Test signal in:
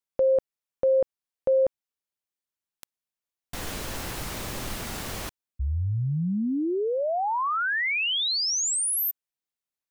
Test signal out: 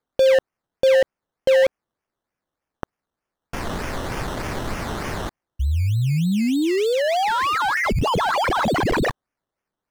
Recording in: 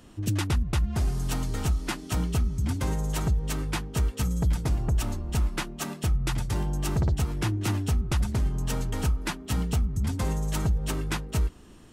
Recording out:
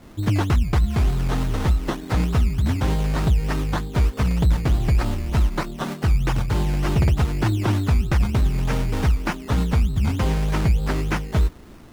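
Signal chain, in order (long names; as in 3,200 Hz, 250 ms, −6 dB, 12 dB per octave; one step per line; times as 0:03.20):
sample-and-hold swept by an LFO 15×, swing 60% 3.3 Hz
slew-rate limiting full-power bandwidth 110 Hz
level +6.5 dB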